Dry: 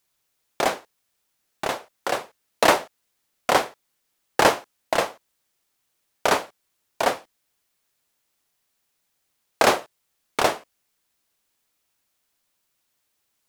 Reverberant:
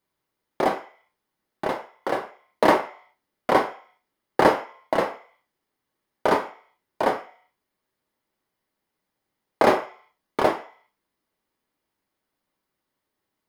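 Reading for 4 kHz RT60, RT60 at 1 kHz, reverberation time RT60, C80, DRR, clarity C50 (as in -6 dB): 0.60 s, 0.55 s, 0.45 s, 16.5 dB, 4.0 dB, 12.0 dB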